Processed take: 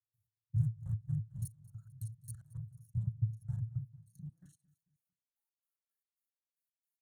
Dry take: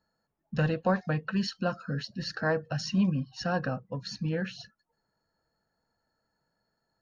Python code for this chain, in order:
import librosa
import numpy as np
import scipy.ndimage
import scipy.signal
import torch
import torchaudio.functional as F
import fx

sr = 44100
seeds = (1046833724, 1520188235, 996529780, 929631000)

y = fx.local_reverse(x, sr, ms=33.0)
y = y + 0.4 * np.pad(y, (int(6.0 * sr / 1000.0), 0))[:len(y)]
y = fx.tube_stage(y, sr, drive_db=29.0, bias=0.6)
y = fx.step_gate(y, sr, bpm=112, pattern='.x..x.x.x', floor_db=-24.0, edge_ms=4.5)
y = scipy.signal.sosfilt(scipy.signal.cheby2(4, 40, [200.0, 5300.0], 'bandstop', fs=sr, output='sos'), y)
y = fx.filter_sweep_highpass(y, sr, from_hz=110.0, to_hz=2500.0, start_s=3.7, end_s=6.31, q=8.0)
y = fx.echo_feedback(y, sr, ms=223, feedback_pct=43, wet_db=-21)
y = F.gain(torch.from_numpy(y), 9.0).numpy()